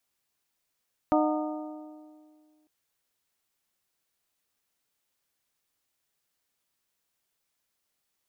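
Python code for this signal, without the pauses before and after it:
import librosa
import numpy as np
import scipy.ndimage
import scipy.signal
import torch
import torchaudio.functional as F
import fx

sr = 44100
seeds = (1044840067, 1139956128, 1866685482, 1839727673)

y = fx.strike_metal(sr, length_s=1.55, level_db=-22.0, body='bell', hz=306.0, decay_s=2.11, tilt_db=2, modes=5)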